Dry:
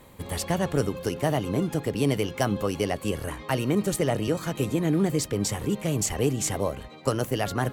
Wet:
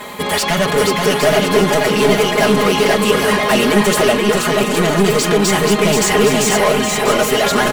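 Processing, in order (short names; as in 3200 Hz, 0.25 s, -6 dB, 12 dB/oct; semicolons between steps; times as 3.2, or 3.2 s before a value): 4.09–4.76 level quantiser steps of 12 dB; overdrive pedal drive 30 dB, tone 4500 Hz, clips at -9.5 dBFS; comb 4.8 ms, depth 96%; bouncing-ball echo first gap 0.48 s, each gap 0.7×, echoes 5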